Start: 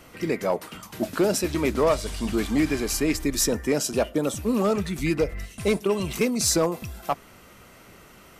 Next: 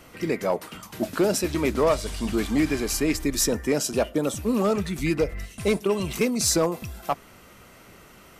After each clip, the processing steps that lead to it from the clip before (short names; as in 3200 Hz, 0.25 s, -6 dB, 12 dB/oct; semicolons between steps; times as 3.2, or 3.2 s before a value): nothing audible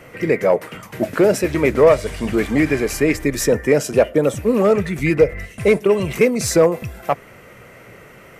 graphic EQ 125/500/2000/4000 Hz +10/+11/+11/-4 dB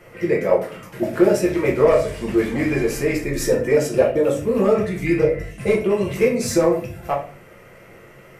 shoebox room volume 38 m³, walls mixed, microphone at 0.82 m; gain -8 dB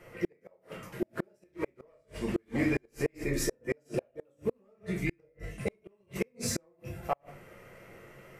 flipped gate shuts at -11 dBFS, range -40 dB; gain -7 dB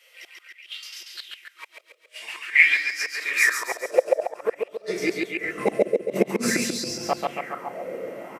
high-pass sweep 3300 Hz -> 240 Hz, 1.87–5.86; feedback echo 0.138 s, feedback 53%, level -3 dB; LFO bell 0.5 Hz 500–5300 Hz +17 dB; gain +5 dB